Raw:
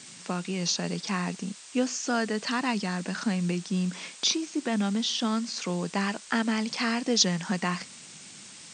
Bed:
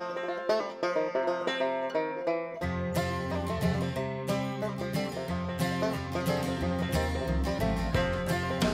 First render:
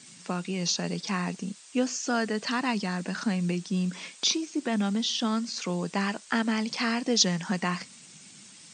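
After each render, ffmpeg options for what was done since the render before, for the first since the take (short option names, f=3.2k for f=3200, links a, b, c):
-af "afftdn=nr=6:nf=-47"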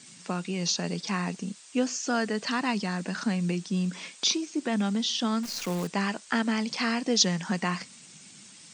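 -filter_complex "[0:a]asettb=1/sr,asplit=3[a][b][c];[a]atrim=end=5.434[d];[b]atrim=start=5.43:end=5.87,asetpts=PTS-STARTPTS,afade=t=in:d=0.004:c=qsin,afade=t=out:st=0.436:d=0.004:c=qsin,acrusher=bits=7:dc=4:mix=0:aa=0.000001[e];[c]atrim=start=5.866[f];[d][e]acrossfade=d=0.004:c1=hsin:c2=qsin[g];[g][f]acrossfade=d=0.004:c1=qsin:c2=hsin"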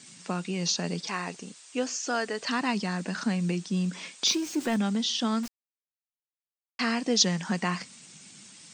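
-filter_complex "[0:a]asettb=1/sr,asplit=3[a][b][c];[a]atrim=end=1.074[d];[b]atrim=start=1.07:end=2.49,asetpts=PTS-STARTPTS,afade=t=in:d=0.004:c=qsin,afade=t=out:st=1.416:d=0.004:c=qsin,equalizer=f=200:t=o:w=0.67:g=-11.5[e];[c]atrim=start=2.486[f];[d][e]acrossfade=d=0.004:c1=hsin:c2=qsin[g];[g][f]acrossfade=d=0.004:c1=qsin:c2=hsin,asettb=1/sr,asplit=3[h][i][j];[h]atrim=end=4.274[k];[i]atrim=start=4.27:end=4.77,asetpts=PTS-STARTPTS,afade=t=in:d=0.004:c=qsin,afade=t=out:st=0.496:d=0.004:c=qsin,aeval=exprs='val(0)+0.5*0.0133*sgn(val(0))':c=same[l];[j]atrim=start=4.766[m];[k][l]acrossfade=d=0.004:c1=hsin:c2=qsin[n];[n][m]acrossfade=d=0.004:c1=qsin:c2=hsin,asplit=3[o][p][q];[o]atrim=end=5.48,asetpts=PTS-STARTPTS,afade=t=out:st=5.476:d=0.004:c=hsin[r];[p]atrim=start=5.48:end=6.79,asetpts=PTS-STARTPTS,volume=0[s];[q]atrim=start=6.79,asetpts=PTS-STARTPTS,afade=t=in:d=0.004:c=hsin[t];[r][s][t]concat=n=3:v=0:a=1"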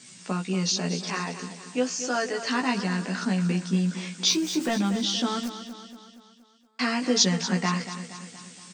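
-filter_complex "[0:a]asplit=2[a][b];[b]adelay=16,volume=-3dB[c];[a][c]amix=inputs=2:normalize=0,asplit=2[d][e];[e]aecho=0:1:235|470|705|940|1175|1410:0.266|0.144|0.0776|0.0419|0.0226|0.0122[f];[d][f]amix=inputs=2:normalize=0"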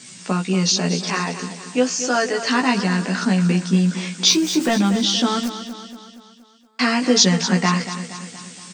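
-af "volume=7.5dB,alimiter=limit=-2dB:level=0:latency=1"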